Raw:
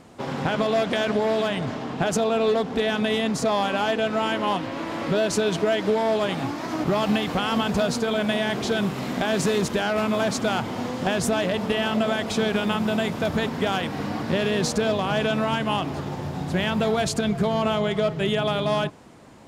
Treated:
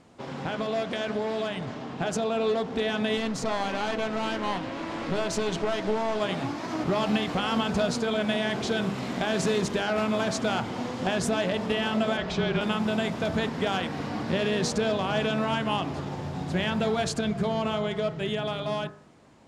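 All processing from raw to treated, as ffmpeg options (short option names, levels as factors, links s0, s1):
-filter_complex "[0:a]asettb=1/sr,asplit=3[s0][s1][s2];[s0]atrim=end=3.174[s3];[s1]atrim=start=3.17:end=6.2,asetpts=PTS-STARTPTS,afade=t=in:d=0.004:c=qsin,afade=t=out:st=3.026:d=0.004:c=qsin,lowpass=11000,aeval=exprs='clip(val(0),-1,0.0398)':c=same[s4];[s2]atrim=start=6.196[s5];[s3][s4]acrossfade=d=0.004:c1=hsin:c2=qsin[s6];[s6][s5]acrossfade=d=0.004:c1=qsin:c2=hsin,asettb=1/sr,asplit=3[s7][s8][s9];[s7]atrim=end=12.174[s10];[s8]atrim=start=12.17:end=12.61,asetpts=PTS-STARTPTS,afade=t=in:d=0.004:c=qsin,afade=t=out:st=0.436:d=0.004:c=qsin,lowpass=4700,afreqshift=-33[s11];[s9]atrim=start=12.606[s12];[s10][s11]acrossfade=d=0.004:c1=hsin:c2=qsin[s13];[s13][s12]acrossfade=d=0.004:c1=qsin:c2=hsin,dynaudnorm=f=440:g=11:m=1.58,lowpass=9000,bandreject=f=50.62:t=h:w=4,bandreject=f=101.24:t=h:w=4,bandreject=f=151.86:t=h:w=4,bandreject=f=202.48:t=h:w=4,bandreject=f=253.1:t=h:w=4,bandreject=f=303.72:t=h:w=4,bandreject=f=354.34:t=h:w=4,bandreject=f=404.96:t=h:w=4,bandreject=f=455.58:t=h:w=4,bandreject=f=506.2:t=h:w=4,bandreject=f=556.82:t=h:w=4,bandreject=f=607.44:t=h:w=4,bandreject=f=658.06:t=h:w=4,bandreject=f=708.68:t=h:w=4,bandreject=f=759.3:t=h:w=4,bandreject=f=809.92:t=h:w=4,bandreject=f=860.54:t=h:w=4,bandreject=f=911.16:t=h:w=4,bandreject=f=961.78:t=h:w=4,bandreject=f=1012.4:t=h:w=4,bandreject=f=1063.02:t=h:w=4,bandreject=f=1113.64:t=h:w=4,bandreject=f=1164.26:t=h:w=4,bandreject=f=1214.88:t=h:w=4,bandreject=f=1265.5:t=h:w=4,bandreject=f=1316.12:t=h:w=4,bandreject=f=1366.74:t=h:w=4,bandreject=f=1417.36:t=h:w=4,bandreject=f=1467.98:t=h:w=4,bandreject=f=1518.6:t=h:w=4,bandreject=f=1569.22:t=h:w=4,bandreject=f=1619.84:t=h:w=4,bandreject=f=1670.46:t=h:w=4,bandreject=f=1721.08:t=h:w=4,bandreject=f=1771.7:t=h:w=4,bandreject=f=1822.32:t=h:w=4,bandreject=f=1872.94:t=h:w=4,bandreject=f=1923.56:t=h:w=4,bandreject=f=1974.18:t=h:w=4,volume=0.473"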